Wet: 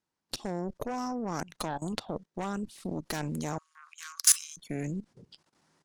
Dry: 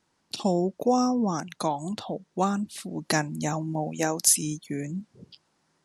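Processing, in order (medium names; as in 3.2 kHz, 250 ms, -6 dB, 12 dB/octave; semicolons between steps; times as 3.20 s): Chebyshev shaper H 6 -15 dB, 7 -41 dB, 8 -12 dB, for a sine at -6.5 dBFS; level held to a coarse grid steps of 18 dB; 3.58–4.57 s: rippled Chebyshev high-pass 1.1 kHz, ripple 3 dB; trim +2.5 dB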